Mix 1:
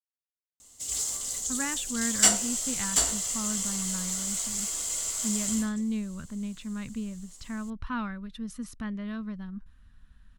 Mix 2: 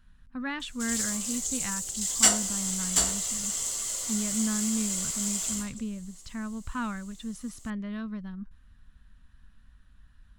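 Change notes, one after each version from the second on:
speech: entry -1.15 s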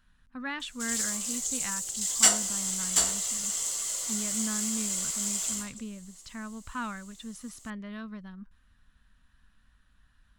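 master: add bass shelf 260 Hz -9 dB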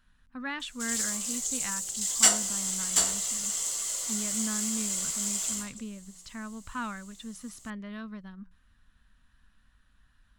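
master: add hum notches 60/120/180 Hz

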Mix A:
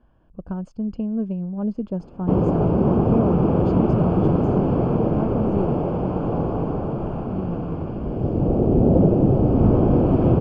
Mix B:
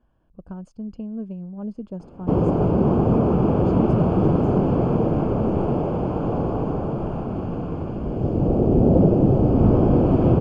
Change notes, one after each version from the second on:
speech -6.5 dB; master: remove distance through air 80 m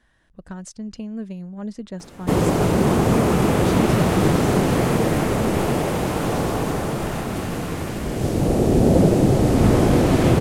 background: remove distance through air 100 m; master: remove boxcar filter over 23 samples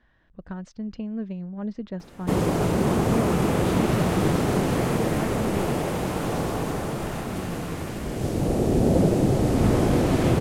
speech: add distance through air 210 m; background -4.5 dB

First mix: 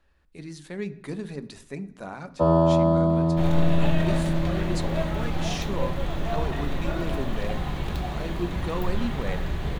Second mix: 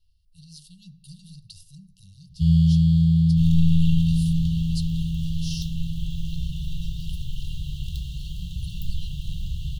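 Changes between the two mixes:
speech: add rippled EQ curve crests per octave 0.88, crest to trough 9 dB; first sound +10.0 dB; master: add brick-wall FIR band-stop 170–2700 Hz

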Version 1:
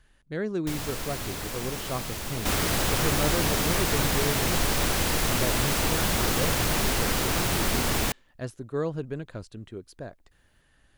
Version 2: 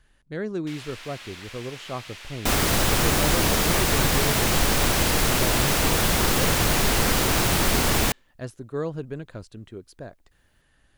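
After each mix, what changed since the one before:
first sound: add band-pass filter 2.6 kHz, Q 1.2; second sound +4.5 dB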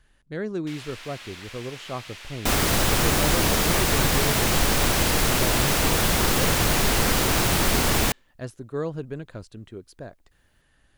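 no change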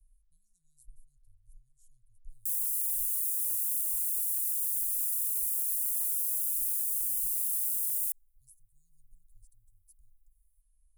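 first sound: muted; second sound: add steep high-pass 310 Hz 36 dB/octave; master: add inverse Chebyshev band-stop 250–2200 Hz, stop band 80 dB

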